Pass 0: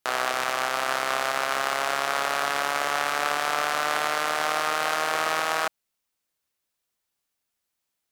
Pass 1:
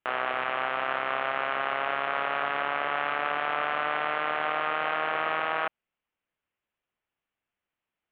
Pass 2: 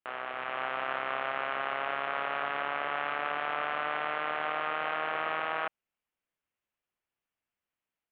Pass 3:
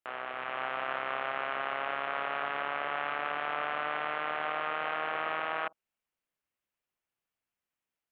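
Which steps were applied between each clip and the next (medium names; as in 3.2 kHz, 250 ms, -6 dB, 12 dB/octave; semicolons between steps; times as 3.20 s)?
steep low-pass 3.1 kHz 48 dB/octave; in parallel at +2 dB: peak limiter -17.5 dBFS, peak gain reduction 8 dB; on the sum: trim -7.5 dB
level rider gain up to 5 dB; trim -9 dB
reverberation, pre-delay 47 ms, DRR 29 dB; trim -1 dB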